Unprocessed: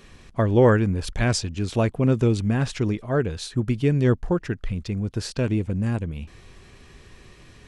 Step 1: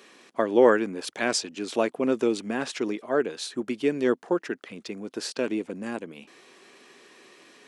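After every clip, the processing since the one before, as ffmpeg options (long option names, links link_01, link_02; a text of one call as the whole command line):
ffmpeg -i in.wav -af "highpass=frequency=270:width=0.5412,highpass=frequency=270:width=1.3066" out.wav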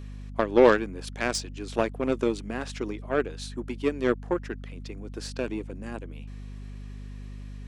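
ffmpeg -i in.wav -af "aeval=exprs='0.531*(cos(1*acos(clip(val(0)/0.531,-1,1)))-cos(1*PI/2))+0.0211*(cos(5*acos(clip(val(0)/0.531,-1,1)))-cos(5*PI/2))+0.0531*(cos(7*acos(clip(val(0)/0.531,-1,1)))-cos(7*PI/2))':channel_layout=same,aeval=exprs='val(0)+0.0126*(sin(2*PI*50*n/s)+sin(2*PI*2*50*n/s)/2+sin(2*PI*3*50*n/s)/3+sin(2*PI*4*50*n/s)/4+sin(2*PI*5*50*n/s)/5)':channel_layout=same" out.wav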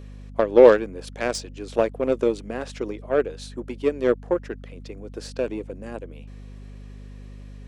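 ffmpeg -i in.wav -af "equalizer=frequency=520:width=1.8:gain=9,volume=-1dB" out.wav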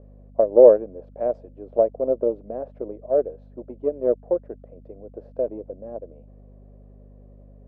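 ffmpeg -i in.wav -af "lowpass=frequency=620:width_type=q:width=4.8,volume=-7.5dB" out.wav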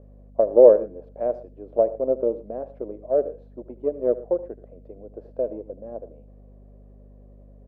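ffmpeg -i in.wav -af "aecho=1:1:77|115:0.141|0.1,volume=-1dB" out.wav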